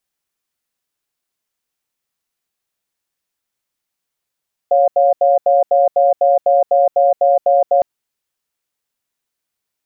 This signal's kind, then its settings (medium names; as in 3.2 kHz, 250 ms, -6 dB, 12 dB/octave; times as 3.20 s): cadence 556 Hz, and 707 Hz, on 0.17 s, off 0.08 s, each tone -11.5 dBFS 3.11 s